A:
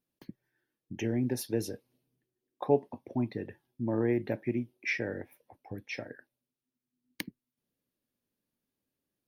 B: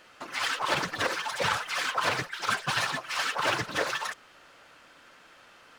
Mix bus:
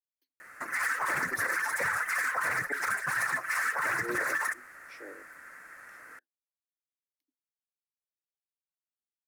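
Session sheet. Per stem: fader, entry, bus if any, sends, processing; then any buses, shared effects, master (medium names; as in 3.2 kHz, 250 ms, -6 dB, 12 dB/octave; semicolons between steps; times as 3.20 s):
-14.5 dB, 0.00 s, no send, Chebyshev high-pass 260 Hz, order 8; slow attack 188 ms; three bands expanded up and down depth 100%
-2.5 dB, 0.40 s, no send, FFT filter 880 Hz 0 dB, 1.9 kHz +14 dB, 3.1 kHz -17 dB, 11 kHz +12 dB; treble shelf 8.7 kHz -11 dB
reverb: none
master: treble shelf 5.3 kHz +11 dB; peak limiter -21 dBFS, peak gain reduction 11.5 dB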